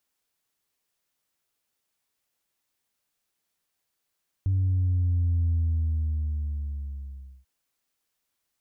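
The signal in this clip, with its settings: sub drop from 96 Hz, over 2.99 s, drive 0 dB, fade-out 1.96 s, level -21 dB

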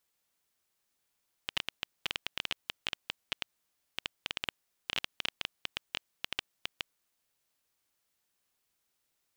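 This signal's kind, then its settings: random clicks 10/s -14 dBFS 5.48 s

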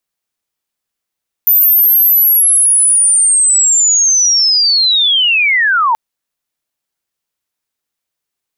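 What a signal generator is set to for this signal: chirp linear 14000 Hz -> 870 Hz -5.5 dBFS -> -8.5 dBFS 4.48 s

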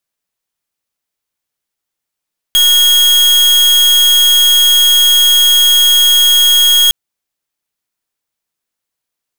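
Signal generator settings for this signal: pulse 3280 Hz, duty 41% -8 dBFS 4.36 s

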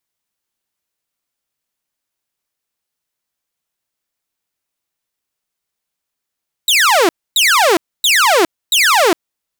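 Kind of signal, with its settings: burst of laser zaps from 4000 Hz, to 310 Hz, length 0.41 s saw, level -6 dB, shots 4, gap 0.27 s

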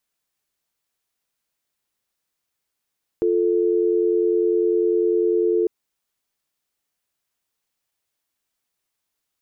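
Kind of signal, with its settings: call progress tone dial tone, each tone -19 dBFS 2.45 s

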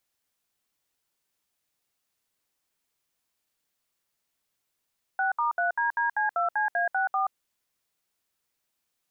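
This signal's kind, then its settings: DTMF "6*3DDC2CA64", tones 0.128 s, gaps 67 ms, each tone -25.5 dBFS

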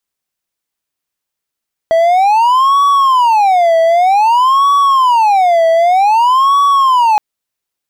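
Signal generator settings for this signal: siren wail 656–1130 Hz 0.53/s triangle -4.5 dBFS 5.27 s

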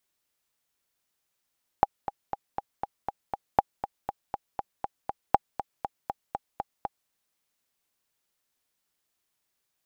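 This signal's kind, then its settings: metronome 239 bpm, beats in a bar 7, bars 3, 808 Hz, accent 12 dB -4.5 dBFS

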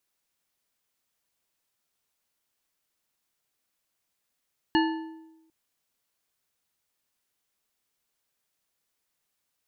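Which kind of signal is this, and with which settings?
metal hit bar, length 0.75 s, lowest mode 322 Hz, modes 5, decay 1.02 s, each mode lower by 3.5 dB, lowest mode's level -19 dB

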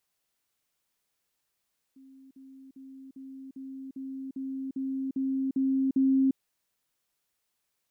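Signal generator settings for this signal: level ladder 267 Hz -50 dBFS, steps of 3 dB, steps 11, 0.35 s 0.05 s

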